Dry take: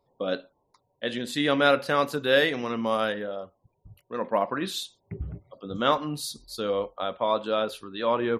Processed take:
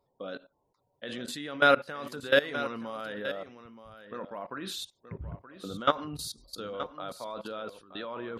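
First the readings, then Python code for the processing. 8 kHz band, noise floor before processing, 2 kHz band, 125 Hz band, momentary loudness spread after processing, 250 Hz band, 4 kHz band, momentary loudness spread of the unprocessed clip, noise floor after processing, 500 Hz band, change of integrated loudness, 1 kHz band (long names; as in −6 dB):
−4.0 dB, −74 dBFS, −2.0 dB, −6.5 dB, 18 LU, −8.0 dB, −5.5 dB, 16 LU, −76 dBFS, −6.5 dB, −5.0 dB, −5.0 dB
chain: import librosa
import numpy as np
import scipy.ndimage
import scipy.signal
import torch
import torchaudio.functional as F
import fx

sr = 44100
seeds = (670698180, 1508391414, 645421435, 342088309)

p1 = fx.peak_eq(x, sr, hz=1400.0, db=5.0, octaves=0.34)
p2 = fx.level_steps(p1, sr, step_db=19)
y = p2 + fx.echo_single(p2, sr, ms=925, db=-12.5, dry=0)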